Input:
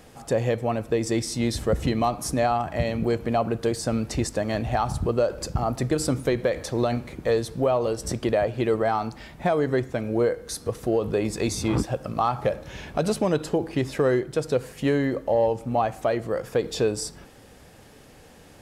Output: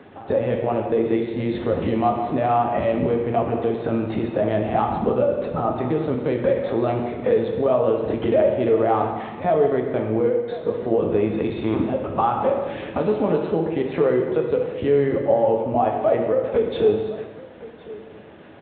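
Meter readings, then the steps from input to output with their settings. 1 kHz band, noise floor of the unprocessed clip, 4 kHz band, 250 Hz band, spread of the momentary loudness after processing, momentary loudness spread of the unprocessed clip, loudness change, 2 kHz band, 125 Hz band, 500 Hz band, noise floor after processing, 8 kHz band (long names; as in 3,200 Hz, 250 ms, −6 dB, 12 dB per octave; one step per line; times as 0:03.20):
+4.0 dB, −50 dBFS, can't be measured, +3.0 dB, 6 LU, 5 LU, +4.0 dB, −1.0 dB, −0.5 dB, +5.0 dB, −41 dBFS, below −40 dB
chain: dynamic equaliser 1,600 Hz, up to −6 dB, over −52 dBFS, Q 6.7
linear-prediction vocoder at 8 kHz pitch kept
on a send: single-tap delay 1,061 ms −21.5 dB
on the sum: brickwall limiter −16 dBFS, peak gain reduction 7 dB
high-pass filter 150 Hz 12 dB per octave
high-shelf EQ 2,700 Hz −11.5 dB
reverb whose tail is shaped and stops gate 460 ms falling, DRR 2 dB
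level +6.5 dB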